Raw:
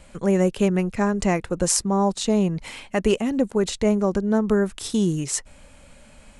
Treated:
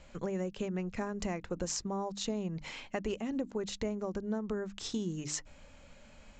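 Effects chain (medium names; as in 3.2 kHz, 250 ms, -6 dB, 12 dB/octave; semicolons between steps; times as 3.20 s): resampled via 16 kHz; compression, threshold -25 dBFS, peak gain reduction 10.5 dB; hum notches 50/100/150/200/250/300 Hz; trim -6.5 dB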